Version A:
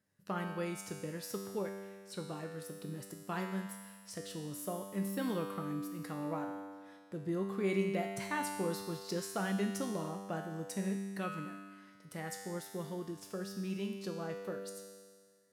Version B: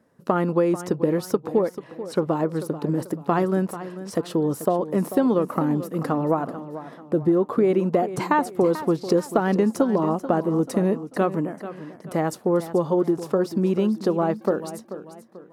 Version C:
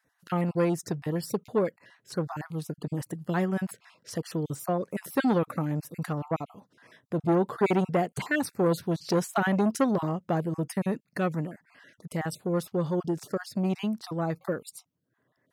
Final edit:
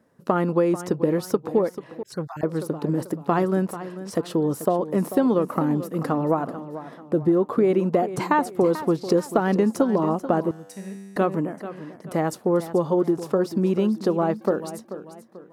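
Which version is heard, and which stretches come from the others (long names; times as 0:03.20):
B
0:02.03–0:02.43: punch in from C
0:10.51–0:11.16: punch in from A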